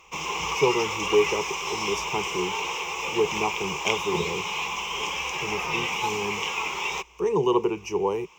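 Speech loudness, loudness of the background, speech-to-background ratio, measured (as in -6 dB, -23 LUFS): -28.0 LUFS, -28.0 LUFS, 0.0 dB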